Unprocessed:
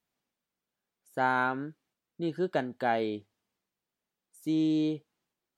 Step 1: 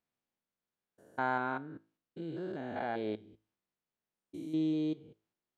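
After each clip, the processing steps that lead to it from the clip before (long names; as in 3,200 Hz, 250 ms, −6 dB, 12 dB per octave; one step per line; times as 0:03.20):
spectrum averaged block by block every 200 ms
high-shelf EQ 5,200 Hz −8 dB
tuned comb filter 54 Hz, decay 0.38 s, harmonics all, mix 40%
level −1 dB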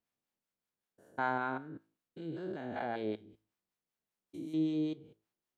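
two-band tremolo in antiphase 5.2 Hz, depth 50%, crossover 660 Hz
level +1.5 dB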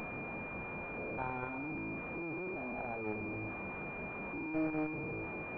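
linear delta modulator 16 kbit/s, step −30.5 dBFS
harmonic generator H 2 −9 dB, 6 −17 dB, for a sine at −19 dBFS
switching amplifier with a slow clock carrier 2,400 Hz
level −4 dB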